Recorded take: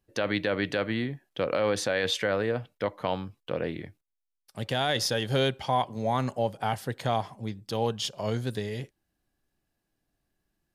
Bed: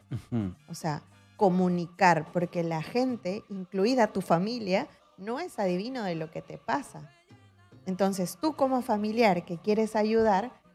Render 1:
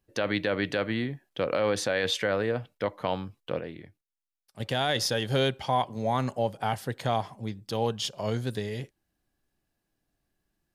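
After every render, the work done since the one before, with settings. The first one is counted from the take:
0:03.60–0:04.60: clip gain −7 dB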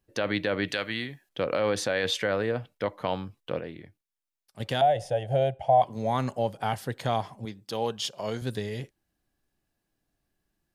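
0:00.68–0:01.29: tilt shelving filter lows −7 dB, about 1,400 Hz
0:04.81–0:05.82: drawn EQ curve 140 Hz 0 dB, 230 Hz −13 dB, 400 Hz −8 dB, 690 Hz +13 dB, 1,100 Hz −17 dB, 1,900 Hz −10 dB, 2,900 Hz −10 dB, 4,200 Hz −23 dB, 9,200 Hz −10 dB, 13,000 Hz −23 dB
0:07.45–0:08.42: high-pass filter 250 Hz 6 dB per octave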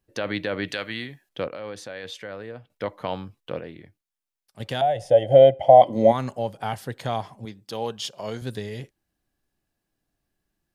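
0:01.48–0:02.70: clip gain −9.5 dB
0:05.09–0:06.11: hollow resonant body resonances 300/530/2,000/3,100 Hz, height 13 dB → 17 dB, ringing for 25 ms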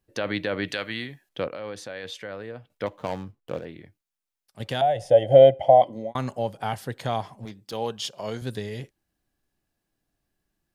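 0:02.86–0:03.65: running median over 25 samples
0:05.56–0:06.15: fade out
0:07.32–0:07.73: gain into a clipping stage and back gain 31.5 dB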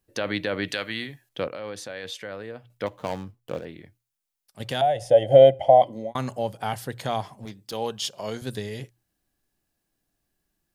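high-shelf EQ 5,500 Hz +6 dB
mains-hum notches 60/120 Hz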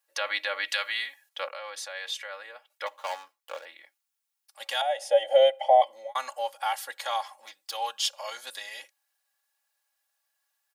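high-pass filter 740 Hz 24 dB per octave
comb filter 3.6 ms, depth 80%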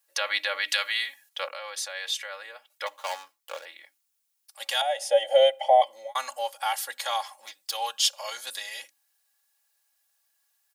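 high-shelf EQ 3,300 Hz +7.5 dB
mains-hum notches 50/100/150/200/250/300 Hz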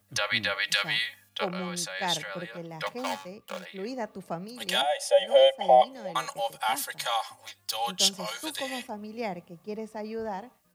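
mix in bed −10.5 dB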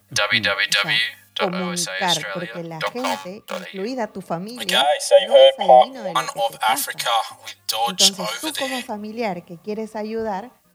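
level +9 dB
brickwall limiter −2 dBFS, peak gain reduction 3 dB

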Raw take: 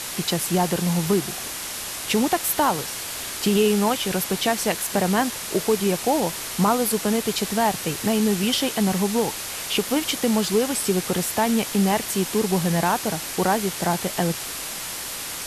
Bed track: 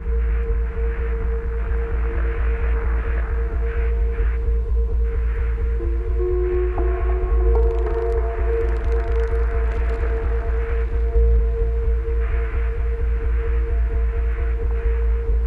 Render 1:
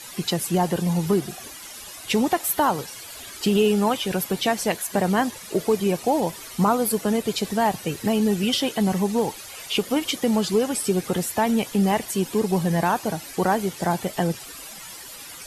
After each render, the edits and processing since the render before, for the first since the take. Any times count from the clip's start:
broadband denoise 13 dB, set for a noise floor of −32 dBFS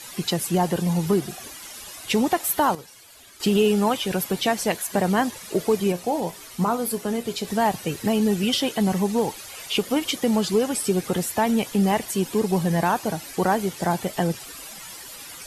0:02.75–0:03.40: clip gain −10 dB
0:05.92–0:07.48: tuned comb filter 59 Hz, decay 0.2 s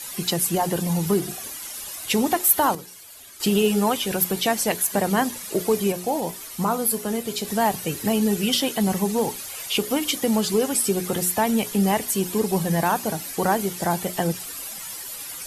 high-shelf EQ 9,500 Hz +12 dB
mains-hum notches 60/120/180/240/300/360/420 Hz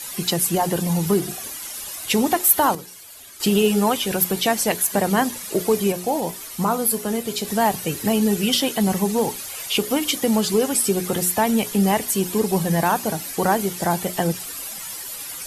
level +2 dB

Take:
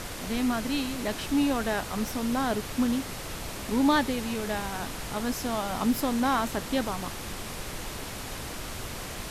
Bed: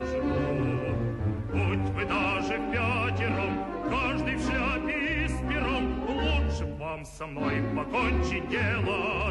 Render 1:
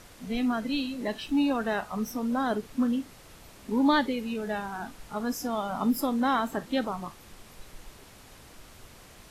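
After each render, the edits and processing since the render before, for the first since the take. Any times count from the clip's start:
noise reduction from a noise print 14 dB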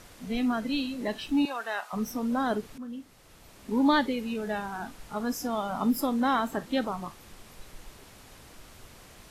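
0:01.45–0:01.93: high-pass filter 790 Hz
0:02.78–0:03.79: fade in, from −16.5 dB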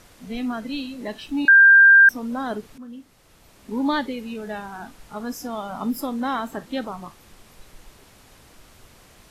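0:01.48–0:02.09: beep over 1,590 Hz −7.5 dBFS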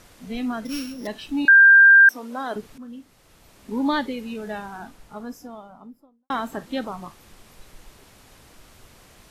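0:00.65–0:01.07: samples sorted by size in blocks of 8 samples
0:01.87–0:02.56: high-pass filter 350 Hz
0:04.50–0:06.30: fade out and dull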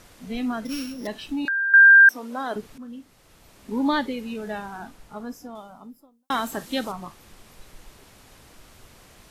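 0:00.57–0:01.74: downward compressor, threshold −24 dBFS
0:05.55–0:06.92: high-shelf EQ 3,400 Hz +12 dB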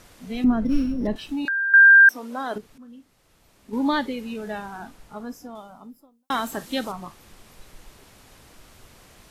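0:00.44–0:01.16: spectral tilt −4.5 dB per octave
0:02.58–0:03.73: clip gain −6 dB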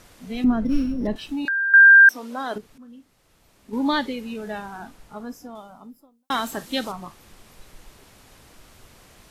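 dynamic equaliser 4,100 Hz, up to +4 dB, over −38 dBFS, Q 0.73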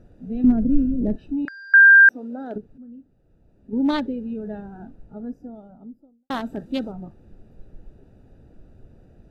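adaptive Wiener filter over 41 samples
low-shelf EQ 490 Hz +5 dB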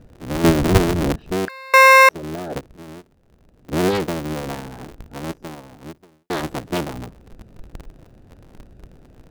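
sub-harmonics by changed cycles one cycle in 3, inverted
in parallel at −7 dB: gain into a clipping stage and back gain 23.5 dB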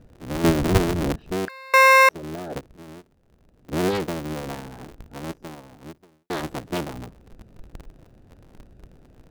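level −4 dB

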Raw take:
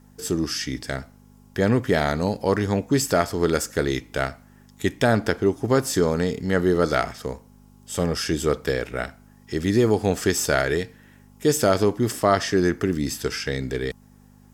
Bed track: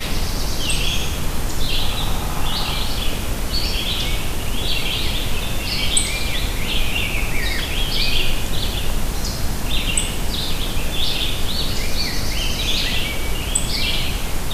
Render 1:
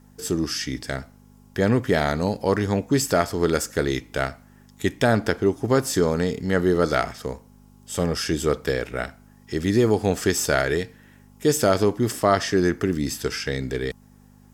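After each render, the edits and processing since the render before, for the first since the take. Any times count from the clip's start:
no processing that can be heard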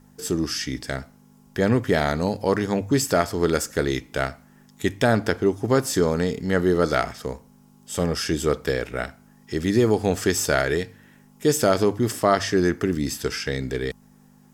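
hum removal 50 Hz, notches 2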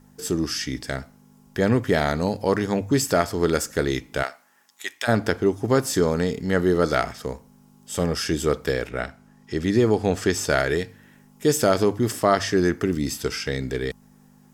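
0:04.22–0:05.07: high-pass filter 510 Hz → 1,400 Hz
0:08.89–0:10.50: high-shelf EQ 9,600 Hz −11 dB
0:12.84–0:13.48: notch filter 1,700 Hz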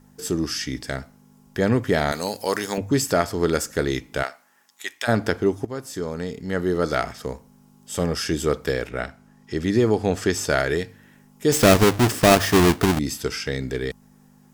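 0:02.12–0:02.78: RIAA equalisation recording
0:05.65–0:07.24: fade in, from −14.5 dB
0:11.52–0:12.99: each half-wave held at its own peak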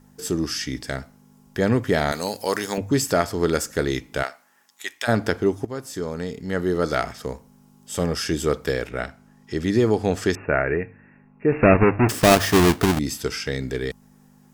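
0:10.35–0:12.09: linear-phase brick-wall low-pass 2,800 Hz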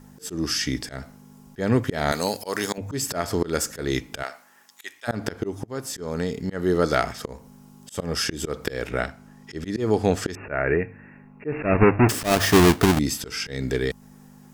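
volume swells 208 ms
in parallel at −2 dB: downward compressor, threshold −31 dBFS, peak gain reduction 16.5 dB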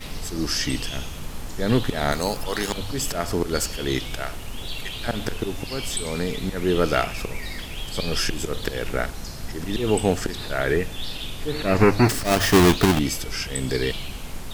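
mix in bed track −11.5 dB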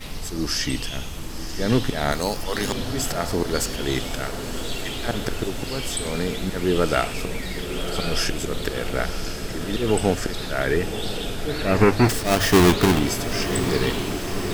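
feedback delay with all-pass diffusion 1,058 ms, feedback 72%, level −9.5 dB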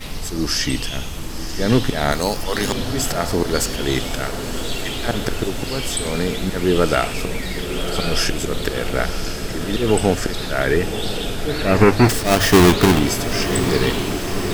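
level +4 dB
brickwall limiter −3 dBFS, peak gain reduction 1.5 dB

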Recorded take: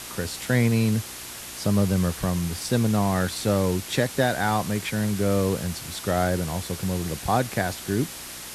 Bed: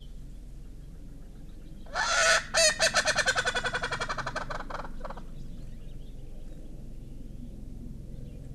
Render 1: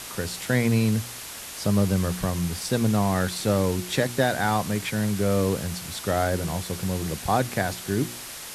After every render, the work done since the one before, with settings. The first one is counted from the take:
hum removal 60 Hz, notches 6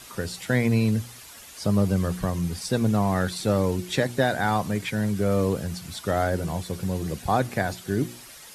broadband denoise 10 dB, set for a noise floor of −38 dBFS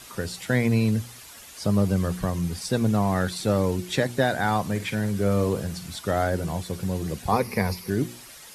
0:04.65–0:05.96: flutter between parallel walls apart 8.5 metres, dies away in 0.25 s
0:07.32–0:07.90: EQ curve with evenly spaced ripples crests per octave 0.86, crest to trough 13 dB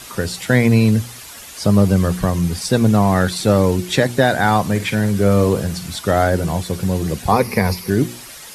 level +8.5 dB
brickwall limiter −2 dBFS, peak gain reduction 2 dB

